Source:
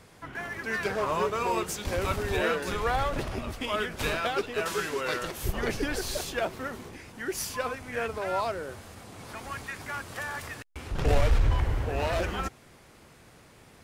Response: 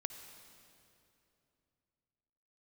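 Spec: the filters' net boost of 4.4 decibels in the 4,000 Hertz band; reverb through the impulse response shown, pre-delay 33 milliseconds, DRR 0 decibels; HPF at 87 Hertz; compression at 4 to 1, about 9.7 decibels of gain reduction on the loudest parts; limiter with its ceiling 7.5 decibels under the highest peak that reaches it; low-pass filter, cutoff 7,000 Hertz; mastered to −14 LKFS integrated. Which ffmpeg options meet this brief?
-filter_complex "[0:a]highpass=87,lowpass=7000,equalizer=frequency=4000:width_type=o:gain=6,acompressor=threshold=-34dB:ratio=4,alimiter=level_in=4.5dB:limit=-24dB:level=0:latency=1,volume=-4.5dB,asplit=2[link_01][link_02];[1:a]atrim=start_sample=2205,adelay=33[link_03];[link_02][link_03]afir=irnorm=-1:irlink=0,volume=1.5dB[link_04];[link_01][link_04]amix=inputs=2:normalize=0,volume=21.5dB"

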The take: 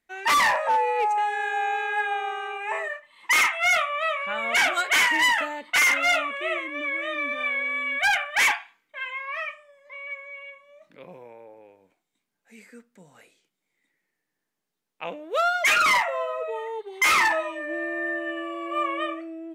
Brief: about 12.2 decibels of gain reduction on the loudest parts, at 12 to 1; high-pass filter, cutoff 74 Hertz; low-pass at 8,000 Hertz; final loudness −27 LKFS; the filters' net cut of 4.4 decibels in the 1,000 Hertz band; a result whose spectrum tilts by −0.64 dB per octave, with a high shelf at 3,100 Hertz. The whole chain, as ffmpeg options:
ffmpeg -i in.wav -af "highpass=74,lowpass=8000,equalizer=frequency=1000:width_type=o:gain=-6.5,highshelf=frequency=3100:gain=6,acompressor=threshold=-28dB:ratio=12,volume=4dB" out.wav

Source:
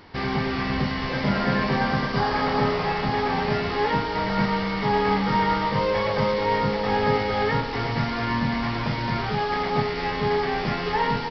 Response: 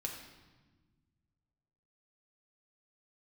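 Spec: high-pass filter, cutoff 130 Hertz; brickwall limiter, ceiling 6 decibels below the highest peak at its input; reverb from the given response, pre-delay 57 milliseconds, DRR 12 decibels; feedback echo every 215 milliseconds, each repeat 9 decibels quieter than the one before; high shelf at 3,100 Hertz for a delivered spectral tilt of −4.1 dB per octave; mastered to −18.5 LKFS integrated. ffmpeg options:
-filter_complex "[0:a]highpass=130,highshelf=frequency=3100:gain=-3.5,alimiter=limit=-16dB:level=0:latency=1,aecho=1:1:215|430|645|860:0.355|0.124|0.0435|0.0152,asplit=2[link_01][link_02];[1:a]atrim=start_sample=2205,adelay=57[link_03];[link_02][link_03]afir=irnorm=-1:irlink=0,volume=-12dB[link_04];[link_01][link_04]amix=inputs=2:normalize=0,volume=6.5dB"

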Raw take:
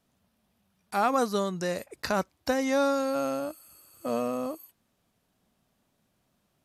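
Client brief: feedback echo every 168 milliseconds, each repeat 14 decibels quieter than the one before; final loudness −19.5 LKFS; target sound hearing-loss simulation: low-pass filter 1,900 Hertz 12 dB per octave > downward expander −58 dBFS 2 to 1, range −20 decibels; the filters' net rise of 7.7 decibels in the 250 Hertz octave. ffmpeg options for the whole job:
ffmpeg -i in.wav -af "lowpass=1900,equalizer=frequency=250:width_type=o:gain=8.5,aecho=1:1:168|336:0.2|0.0399,agate=range=-20dB:threshold=-58dB:ratio=2,volume=6.5dB" out.wav

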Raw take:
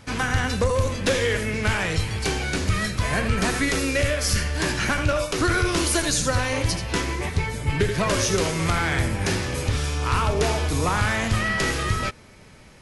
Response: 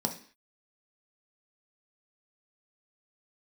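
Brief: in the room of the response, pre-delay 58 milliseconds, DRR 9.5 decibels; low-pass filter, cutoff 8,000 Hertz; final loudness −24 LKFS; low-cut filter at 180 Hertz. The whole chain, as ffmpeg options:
-filter_complex "[0:a]highpass=180,lowpass=8000,asplit=2[link_01][link_02];[1:a]atrim=start_sample=2205,adelay=58[link_03];[link_02][link_03]afir=irnorm=-1:irlink=0,volume=-15dB[link_04];[link_01][link_04]amix=inputs=2:normalize=0"

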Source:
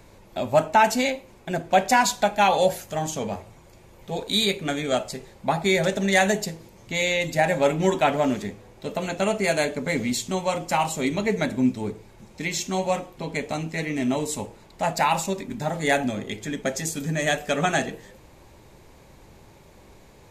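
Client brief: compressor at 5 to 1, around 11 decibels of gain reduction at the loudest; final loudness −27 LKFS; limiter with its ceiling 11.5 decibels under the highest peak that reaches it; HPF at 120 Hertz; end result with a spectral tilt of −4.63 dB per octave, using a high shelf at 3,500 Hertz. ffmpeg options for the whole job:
ffmpeg -i in.wav -af "highpass=120,highshelf=frequency=3500:gain=-5.5,acompressor=threshold=-26dB:ratio=5,volume=8.5dB,alimiter=limit=-17dB:level=0:latency=1" out.wav

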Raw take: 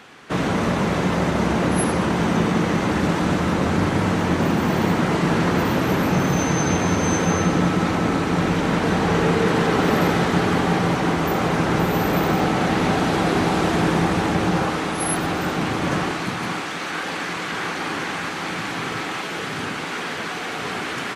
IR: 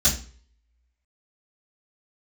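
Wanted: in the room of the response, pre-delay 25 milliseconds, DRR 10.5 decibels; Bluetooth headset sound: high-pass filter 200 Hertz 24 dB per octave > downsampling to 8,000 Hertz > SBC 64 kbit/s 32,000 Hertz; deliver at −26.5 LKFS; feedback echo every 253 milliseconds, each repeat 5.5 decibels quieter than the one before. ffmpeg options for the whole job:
-filter_complex "[0:a]aecho=1:1:253|506|759|1012|1265|1518|1771:0.531|0.281|0.149|0.079|0.0419|0.0222|0.0118,asplit=2[link_01][link_02];[1:a]atrim=start_sample=2205,adelay=25[link_03];[link_02][link_03]afir=irnorm=-1:irlink=0,volume=-23.5dB[link_04];[link_01][link_04]amix=inputs=2:normalize=0,highpass=frequency=200:width=0.5412,highpass=frequency=200:width=1.3066,aresample=8000,aresample=44100,volume=-6dB" -ar 32000 -c:a sbc -b:a 64k

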